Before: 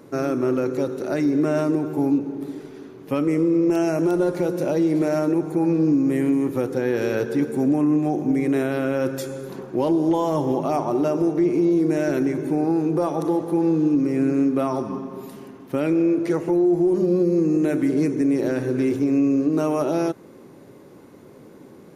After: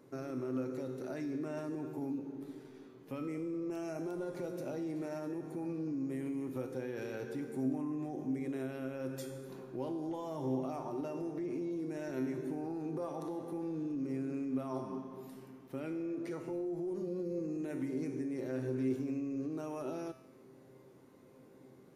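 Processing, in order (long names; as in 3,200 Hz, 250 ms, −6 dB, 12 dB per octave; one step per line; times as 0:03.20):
brickwall limiter −17 dBFS, peak gain reduction 5 dB
tuned comb filter 130 Hz, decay 0.83 s, harmonics all, mix 80%
level −2.5 dB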